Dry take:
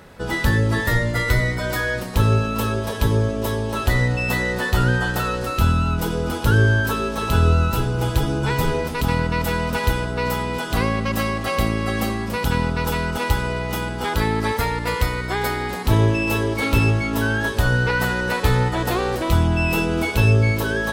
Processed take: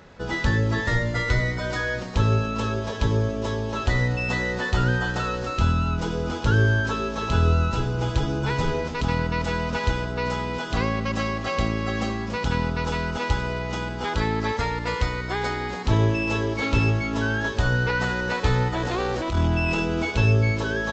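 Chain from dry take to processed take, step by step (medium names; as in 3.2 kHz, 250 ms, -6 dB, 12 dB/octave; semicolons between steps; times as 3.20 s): 18.77–19.81 s: transient shaper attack -12 dB, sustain +6 dB; resampled via 16 kHz; trim -3.5 dB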